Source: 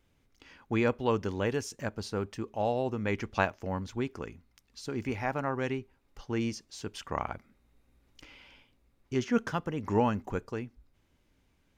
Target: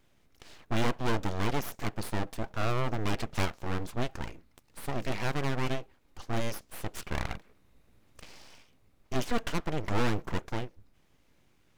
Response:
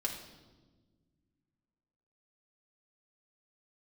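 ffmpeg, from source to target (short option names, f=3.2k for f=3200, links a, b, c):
-af "aeval=exprs='(tanh(22.4*val(0)+0.5)-tanh(0.5))/22.4':c=same,aeval=exprs='abs(val(0))':c=same,volume=7dB"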